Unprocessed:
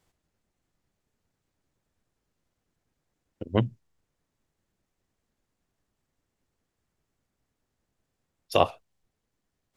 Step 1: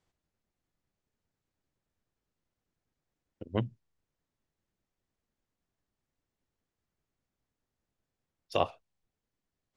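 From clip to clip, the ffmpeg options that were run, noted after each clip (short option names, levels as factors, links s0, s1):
-af "lowpass=7400,volume=0.447"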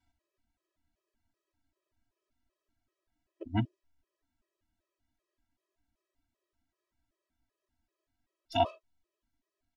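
-af "highshelf=f=7100:g=-10,aecho=1:1:3.1:0.94,afftfilt=real='re*gt(sin(2*PI*2.6*pts/sr)*(1-2*mod(floor(b*sr/1024/330),2)),0)':imag='im*gt(sin(2*PI*2.6*pts/sr)*(1-2*mod(floor(b*sr/1024/330),2)),0)':win_size=1024:overlap=0.75,volume=1.41"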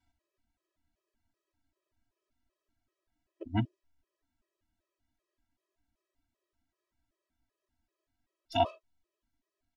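-af anull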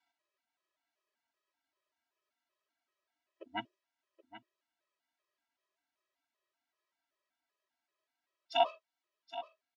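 -af "highpass=700,lowpass=5200,aecho=1:1:775:0.2,volume=1.26"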